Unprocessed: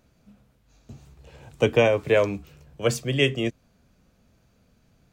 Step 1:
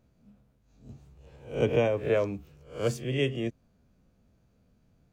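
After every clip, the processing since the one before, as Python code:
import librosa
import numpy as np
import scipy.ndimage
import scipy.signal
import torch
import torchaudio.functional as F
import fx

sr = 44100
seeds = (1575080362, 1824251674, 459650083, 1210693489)

y = fx.spec_swells(x, sr, rise_s=0.38)
y = fx.tilt_shelf(y, sr, db=4.0, hz=880.0)
y = y * librosa.db_to_amplitude(-8.5)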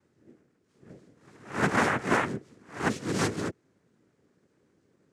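y = fx.noise_vocoder(x, sr, seeds[0], bands=3)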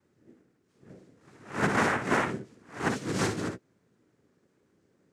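y = fx.room_early_taps(x, sr, ms=(58, 74), db=(-7.5, -16.5))
y = y * librosa.db_to_amplitude(-1.5)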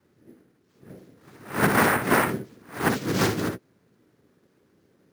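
y = np.repeat(x[::4], 4)[:len(x)]
y = y * librosa.db_to_amplitude(5.5)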